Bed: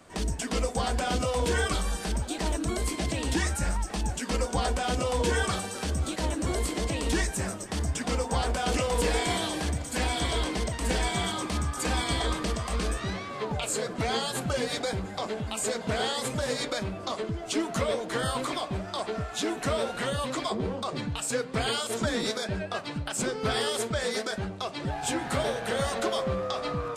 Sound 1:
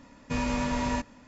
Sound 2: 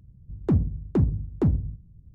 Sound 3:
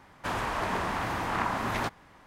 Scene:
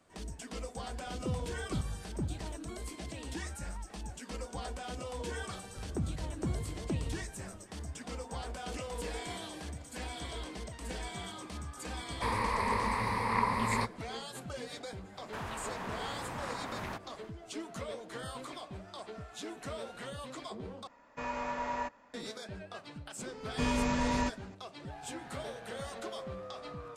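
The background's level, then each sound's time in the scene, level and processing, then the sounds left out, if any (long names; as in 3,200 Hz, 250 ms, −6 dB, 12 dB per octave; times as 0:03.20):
bed −13 dB
0:00.77: mix in 2 −14.5 dB
0:05.48: mix in 2 −6 dB + downward compressor 2 to 1, threshold −31 dBFS
0:11.97: mix in 3 −4.5 dB + EQ curve with evenly spaced ripples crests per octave 0.92, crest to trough 15 dB
0:15.09: mix in 3 −0.5 dB, fades 0.10 s + downward compressor 2 to 1, threshold −45 dBFS
0:20.87: overwrite with 1 −1.5 dB + three-way crossover with the lows and the highs turned down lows −17 dB, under 480 Hz, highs −13 dB, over 2,000 Hz
0:23.28: mix in 1 −2 dB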